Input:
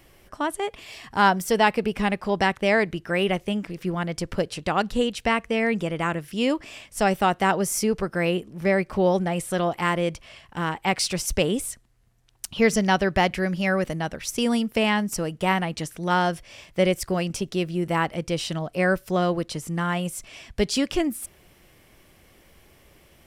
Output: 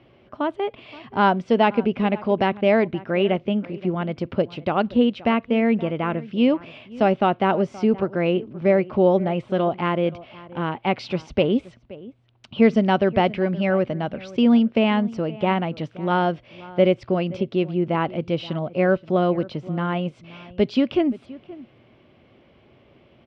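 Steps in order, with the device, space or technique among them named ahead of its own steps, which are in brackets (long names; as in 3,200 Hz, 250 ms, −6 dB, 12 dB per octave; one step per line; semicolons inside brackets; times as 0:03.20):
guitar cabinet (loudspeaker in its box 85–3,500 Hz, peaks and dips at 120 Hz +7 dB, 240 Hz +8 dB, 370 Hz +4 dB, 600 Hz +5 dB, 1,800 Hz −7 dB)
high-shelf EQ 7,100 Hz −4.5 dB
slap from a distant wall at 90 metres, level −19 dB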